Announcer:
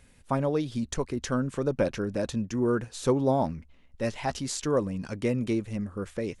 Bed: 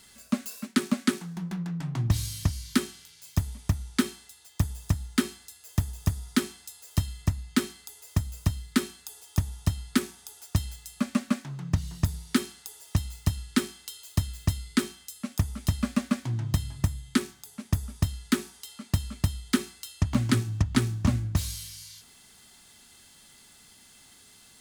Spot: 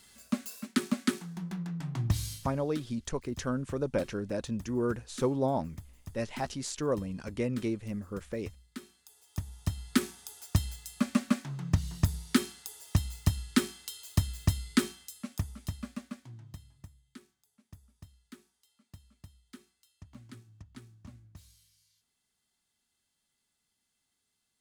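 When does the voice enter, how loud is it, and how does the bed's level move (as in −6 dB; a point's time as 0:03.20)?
2.15 s, −4.5 dB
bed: 0:02.33 −4 dB
0:02.54 −20 dB
0:08.70 −20 dB
0:10.03 −1 dB
0:14.85 −1 dB
0:17.00 −26 dB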